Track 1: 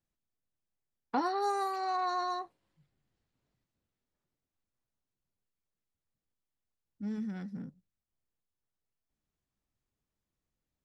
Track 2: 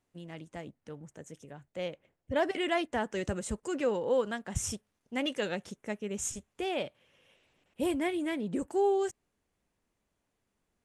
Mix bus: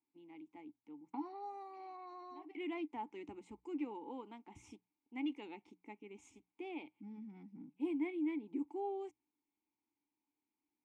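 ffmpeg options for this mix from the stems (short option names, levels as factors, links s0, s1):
-filter_complex "[0:a]acompressor=threshold=0.02:ratio=2.5,volume=1.19,asplit=2[s0][s1];[1:a]equalizer=f=170:w=2.1:g=-10,bandreject=f=60:t=h:w=6,bandreject=f=120:t=h:w=6,bandreject=f=180:t=h:w=6,volume=1.12[s2];[s1]apad=whole_len=478149[s3];[s2][s3]sidechaincompress=threshold=0.002:ratio=6:attack=16:release=149[s4];[s0][s4]amix=inputs=2:normalize=0,asplit=3[s5][s6][s7];[s5]bandpass=f=300:t=q:w=8,volume=1[s8];[s6]bandpass=f=870:t=q:w=8,volume=0.501[s9];[s7]bandpass=f=2240:t=q:w=8,volume=0.355[s10];[s8][s9][s10]amix=inputs=3:normalize=0"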